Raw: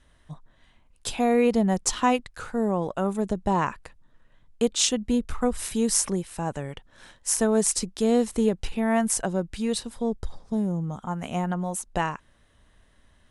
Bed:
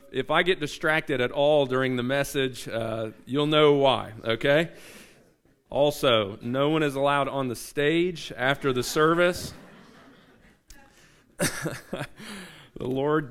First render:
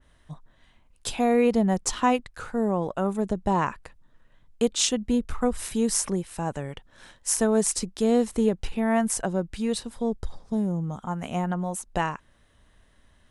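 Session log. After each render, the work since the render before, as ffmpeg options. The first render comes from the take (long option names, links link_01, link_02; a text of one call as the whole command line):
ffmpeg -i in.wav -af "adynamicequalizer=threshold=0.00708:dfrequency=2400:dqfactor=0.7:tfrequency=2400:tqfactor=0.7:attack=5:release=100:ratio=0.375:range=1.5:mode=cutabove:tftype=highshelf" out.wav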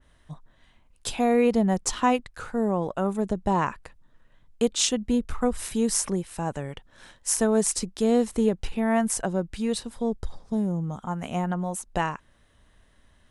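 ffmpeg -i in.wav -af anull out.wav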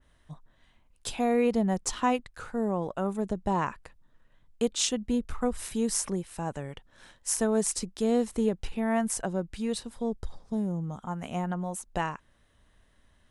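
ffmpeg -i in.wav -af "volume=-4dB" out.wav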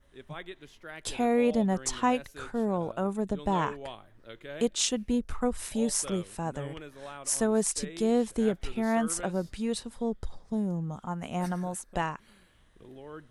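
ffmpeg -i in.wav -i bed.wav -filter_complex "[1:a]volume=-20.5dB[link_01];[0:a][link_01]amix=inputs=2:normalize=0" out.wav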